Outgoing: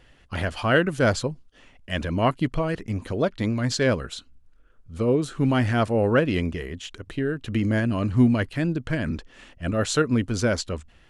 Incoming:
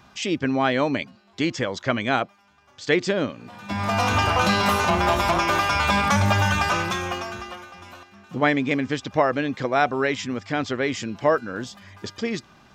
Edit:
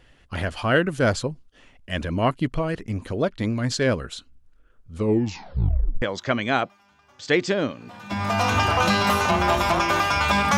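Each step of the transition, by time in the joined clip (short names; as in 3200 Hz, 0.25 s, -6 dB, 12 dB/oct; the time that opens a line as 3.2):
outgoing
4.97 tape stop 1.05 s
6.02 switch to incoming from 1.61 s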